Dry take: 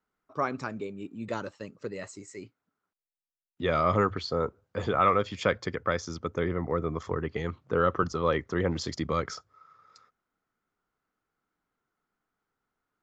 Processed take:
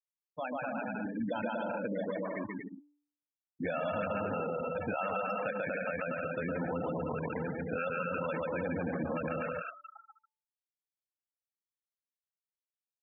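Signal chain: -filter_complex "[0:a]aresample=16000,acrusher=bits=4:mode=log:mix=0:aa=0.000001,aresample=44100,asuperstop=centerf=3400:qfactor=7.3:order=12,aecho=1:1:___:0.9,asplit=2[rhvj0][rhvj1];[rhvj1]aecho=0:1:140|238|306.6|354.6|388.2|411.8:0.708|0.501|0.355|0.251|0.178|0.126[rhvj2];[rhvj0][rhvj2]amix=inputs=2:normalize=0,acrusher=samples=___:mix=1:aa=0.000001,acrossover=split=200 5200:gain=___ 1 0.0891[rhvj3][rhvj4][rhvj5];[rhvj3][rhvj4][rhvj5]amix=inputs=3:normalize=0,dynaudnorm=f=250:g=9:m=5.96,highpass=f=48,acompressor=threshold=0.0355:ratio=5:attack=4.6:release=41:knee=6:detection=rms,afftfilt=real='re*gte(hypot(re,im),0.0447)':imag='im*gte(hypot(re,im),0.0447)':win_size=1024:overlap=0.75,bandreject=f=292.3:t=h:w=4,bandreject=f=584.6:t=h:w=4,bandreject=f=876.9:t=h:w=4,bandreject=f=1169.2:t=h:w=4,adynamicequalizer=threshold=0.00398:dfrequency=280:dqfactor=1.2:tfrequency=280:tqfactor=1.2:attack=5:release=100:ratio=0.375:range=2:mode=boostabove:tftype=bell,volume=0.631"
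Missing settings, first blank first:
1.3, 11, 0.158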